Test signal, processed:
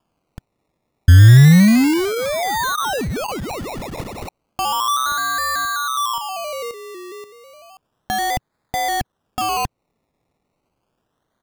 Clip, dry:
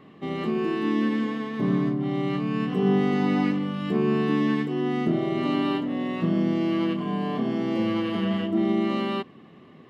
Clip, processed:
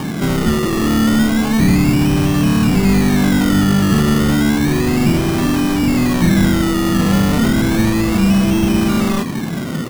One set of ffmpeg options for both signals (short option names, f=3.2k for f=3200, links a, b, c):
-filter_complex "[0:a]lowshelf=f=410:g=6,asplit=2[a][b];[b]highpass=f=720:p=1,volume=38dB,asoftclip=type=tanh:threshold=-8dB[c];[a][c]amix=inputs=2:normalize=0,lowpass=f=3.6k:p=1,volume=-6dB,asplit=2[d][e];[e]acompressor=threshold=-28dB:ratio=6,volume=-3dB[f];[d][f]amix=inputs=2:normalize=0,firequalizer=gain_entry='entry(120,0);entry(430,-17);entry(960,-15);entry(3500,-19)':delay=0.05:min_phase=1,acrusher=samples=22:mix=1:aa=0.000001:lfo=1:lforange=13.2:lforate=0.32,volume=7.5dB"